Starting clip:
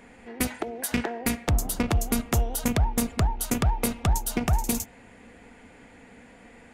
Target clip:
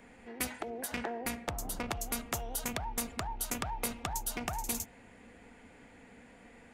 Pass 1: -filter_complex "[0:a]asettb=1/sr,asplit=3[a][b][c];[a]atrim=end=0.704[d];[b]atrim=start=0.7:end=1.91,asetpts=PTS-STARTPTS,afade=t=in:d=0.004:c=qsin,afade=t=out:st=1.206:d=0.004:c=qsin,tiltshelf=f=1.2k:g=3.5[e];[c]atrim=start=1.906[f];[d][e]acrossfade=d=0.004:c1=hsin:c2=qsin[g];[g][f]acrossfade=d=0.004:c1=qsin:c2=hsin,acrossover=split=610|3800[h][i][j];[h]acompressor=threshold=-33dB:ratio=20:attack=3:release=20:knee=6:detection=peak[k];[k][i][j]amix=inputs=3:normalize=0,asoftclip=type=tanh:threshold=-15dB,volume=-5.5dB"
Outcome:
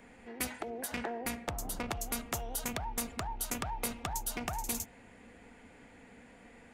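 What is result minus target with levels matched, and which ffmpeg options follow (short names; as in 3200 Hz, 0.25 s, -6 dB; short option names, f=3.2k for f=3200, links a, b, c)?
soft clip: distortion +17 dB
-filter_complex "[0:a]asettb=1/sr,asplit=3[a][b][c];[a]atrim=end=0.704[d];[b]atrim=start=0.7:end=1.91,asetpts=PTS-STARTPTS,afade=t=in:d=0.004:c=qsin,afade=t=out:st=1.206:d=0.004:c=qsin,tiltshelf=f=1.2k:g=3.5[e];[c]atrim=start=1.906[f];[d][e]acrossfade=d=0.004:c1=hsin:c2=qsin[g];[g][f]acrossfade=d=0.004:c1=qsin:c2=hsin,acrossover=split=610|3800[h][i][j];[h]acompressor=threshold=-33dB:ratio=20:attack=3:release=20:knee=6:detection=peak[k];[k][i][j]amix=inputs=3:normalize=0,asoftclip=type=tanh:threshold=-5.5dB,volume=-5.5dB"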